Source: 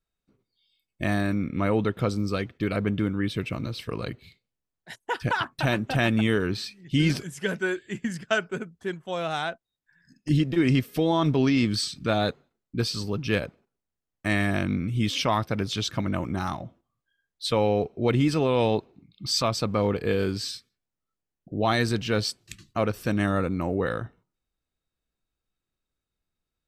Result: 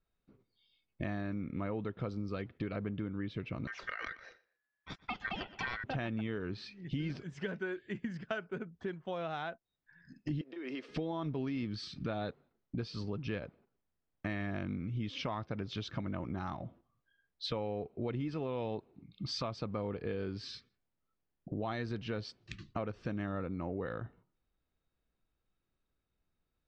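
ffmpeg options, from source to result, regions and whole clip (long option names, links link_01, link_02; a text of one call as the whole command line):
ffmpeg -i in.wav -filter_complex "[0:a]asettb=1/sr,asplit=3[link_01][link_02][link_03];[link_01]atrim=end=3.674[link_04];[link_02]atrim=start=3.67:end=5.84,asetpts=PTS-STARTPTS,afade=type=in:duration=0.004:curve=qsin,afade=type=out:start_time=2.166:duration=0.004:curve=qsin,aeval=exprs='val(0)*sin(2*PI*1700*n/s)':channel_layout=same,asplit=2[link_05][link_06];[link_06]adelay=120,lowpass=frequency=4700:poles=1,volume=-19.5dB,asplit=2[link_07][link_08];[link_08]adelay=120,lowpass=frequency=4700:poles=1,volume=0.29[link_09];[link_05][link_07][link_09]amix=inputs=3:normalize=0,atrim=end_sample=95697[link_10];[link_03]atrim=start=5.836[link_11];[link_04][link_10]acrossfade=duration=0.004:curve1=hsin:curve2=qsin[link_12];[link_12][link_11]acrossfade=duration=0.004:curve1=qsin:curve2=hsin,asettb=1/sr,asplit=3[link_13][link_14][link_15];[link_13]atrim=end=10.414[link_16];[link_14]atrim=start=10.41:end=10.89,asetpts=PTS-STARTPTS,afade=type=in:duration=0.004:curve=qsin,afade=type=out:start_time=0.476:duration=0.004:curve=qsin,highpass=frequency=330:width=0.5412,highpass=frequency=330:width=1.3066,acompressor=threshold=-33dB:ratio=12:attack=3.2:release=140:knee=1:detection=peak[link_17];[link_15]atrim=start=10.886[link_18];[link_16][link_17]acrossfade=duration=0.004:curve1=hsin:curve2=qsin[link_19];[link_19][link_18]acrossfade=duration=0.004:curve1=qsin:curve2=hsin,lowpass=frequency=5800:width=0.5412,lowpass=frequency=5800:width=1.3066,aemphasis=mode=reproduction:type=75kf,acompressor=threshold=-40dB:ratio=4,volume=2.5dB" out.wav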